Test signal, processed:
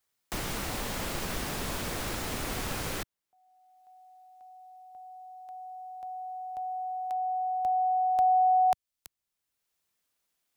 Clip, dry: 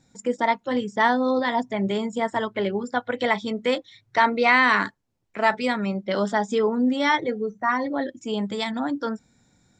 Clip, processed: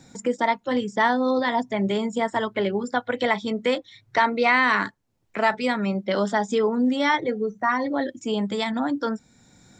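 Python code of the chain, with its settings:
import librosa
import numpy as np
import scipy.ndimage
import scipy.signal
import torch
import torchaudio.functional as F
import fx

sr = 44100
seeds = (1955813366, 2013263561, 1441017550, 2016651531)

y = fx.band_squash(x, sr, depth_pct=40)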